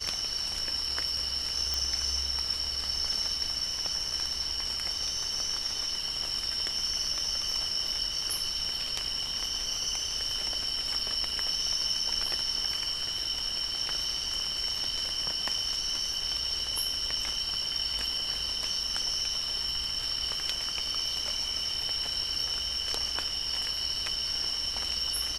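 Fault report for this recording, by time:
0:01.74: click

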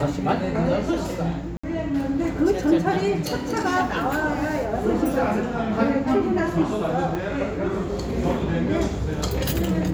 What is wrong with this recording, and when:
0:01.57–0:01.64: drop-out 65 ms
0:07.15: click −16 dBFS

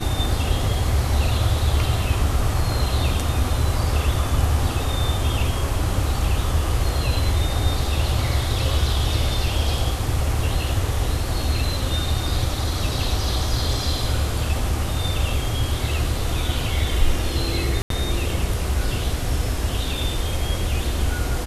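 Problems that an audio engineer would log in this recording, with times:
0:17.82–0:17.90: drop-out 83 ms

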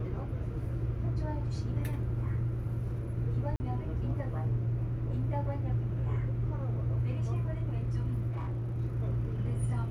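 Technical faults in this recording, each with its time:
0:03.56–0:03.60: drop-out 40 ms
0:08.30–0:08.77: clipping −32 dBFS

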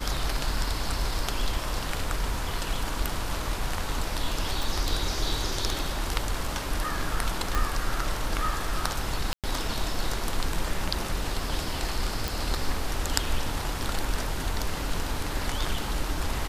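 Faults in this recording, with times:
0:04.63: click
0:07.55: click
0:09.33–0:09.44: drop-out 107 ms
0:12.28: click

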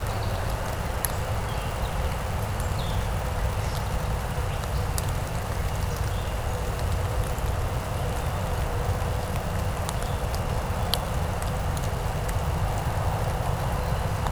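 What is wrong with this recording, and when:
surface crackle 330 per second −31 dBFS

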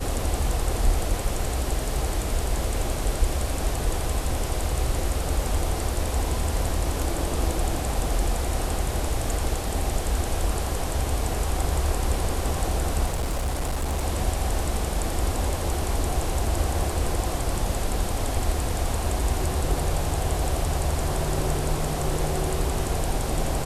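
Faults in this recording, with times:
0:13.06–0:14.01: clipping −22 dBFS

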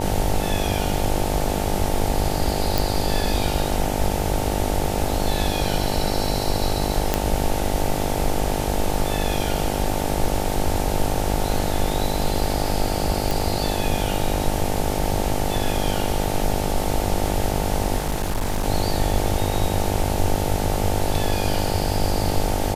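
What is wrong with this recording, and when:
mains buzz 50 Hz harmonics 18 −26 dBFS
0:02.78: click
0:07.14: click −3 dBFS
0:13.31: click
0:17.97–0:18.64: clipping −18.5 dBFS

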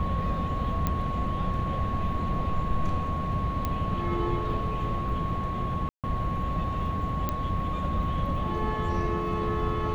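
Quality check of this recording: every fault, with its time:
whistle 1,100 Hz −32 dBFS
0:00.87: click −13 dBFS
0:03.65: click −15 dBFS
0:05.89–0:06.04: drop-out 147 ms
0:07.29: click −14 dBFS

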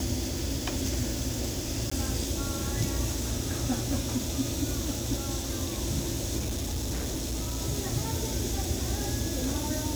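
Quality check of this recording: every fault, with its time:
0:01.90–0:01.92: drop-out 15 ms
0:06.38–0:07.62: clipping −28 dBFS

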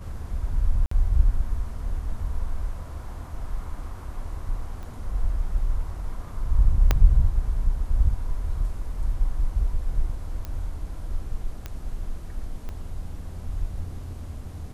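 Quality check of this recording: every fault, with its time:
0:00.86–0:00.91: drop-out 54 ms
0:04.83: click −27 dBFS
0:06.91: click −6 dBFS
0:10.45: click −20 dBFS
0:11.66: click −18 dBFS
0:12.69: click −23 dBFS

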